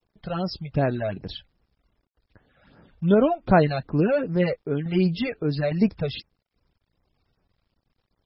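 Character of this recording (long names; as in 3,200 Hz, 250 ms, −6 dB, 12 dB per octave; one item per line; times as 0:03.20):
phaser sweep stages 12, 2.6 Hz, lowest notch 290–3,800 Hz
sample-and-hold tremolo
a quantiser's noise floor 12 bits, dither none
MP3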